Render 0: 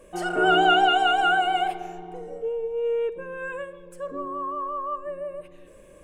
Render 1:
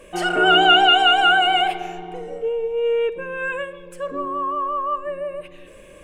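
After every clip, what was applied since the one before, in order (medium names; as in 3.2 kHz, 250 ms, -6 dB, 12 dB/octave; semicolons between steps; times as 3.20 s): in parallel at -3 dB: peak limiter -19 dBFS, peak gain reduction 10 dB; on the sum: peaking EQ 2.7 kHz +8.5 dB 1.4 oct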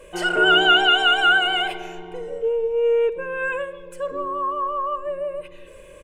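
comb 2 ms, depth 53%; trim -2 dB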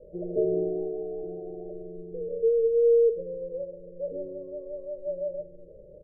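rippled Chebyshev low-pass 630 Hz, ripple 6 dB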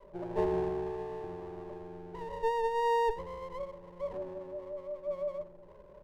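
comb filter that takes the minimum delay 5.1 ms; trim -3.5 dB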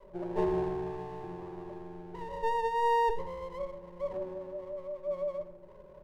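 reverberation RT60 0.75 s, pre-delay 5 ms, DRR 8.5 dB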